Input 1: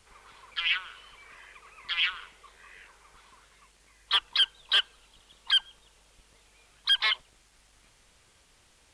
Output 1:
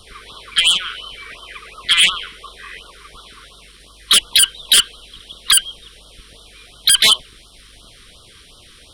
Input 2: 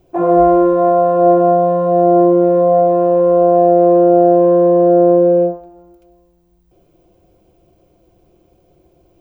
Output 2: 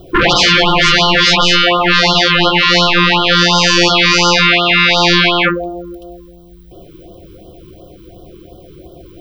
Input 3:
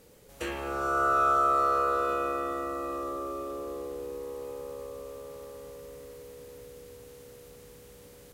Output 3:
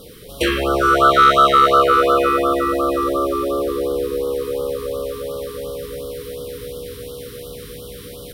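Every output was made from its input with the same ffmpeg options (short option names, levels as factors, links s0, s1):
-af "superequalizer=9b=0.447:13b=1.78:15b=0.355,aeval=exprs='0.891*sin(PI/2*7.94*val(0)/0.891)':c=same,afftfilt=real='re*(1-between(b*sr/1024,650*pow(2100/650,0.5+0.5*sin(2*PI*2.8*pts/sr))/1.41,650*pow(2100/650,0.5+0.5*sin(2*PI*2.8*pts/sr))*1.41))':imag='im*(1-between(b*sr/1024,650*pow(2100/650,0.5+0.5*sin(2*PI*2.8*pts/sr))/1.41,650*pow(2100/650,0.5+0.5*sin(2*PI*2.8*pts/sr))*1.41))':win_size=1024:overlap=0.75,volume=0.562"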